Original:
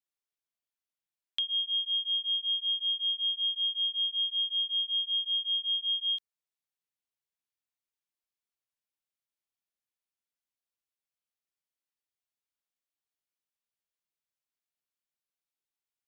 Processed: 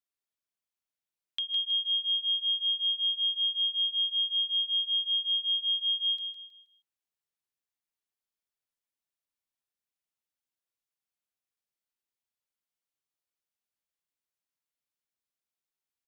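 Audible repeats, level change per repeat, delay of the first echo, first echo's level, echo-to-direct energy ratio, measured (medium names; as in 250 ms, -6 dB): 3, -9.5 dB, 159 ms, -7.0 dB, -6.5 dB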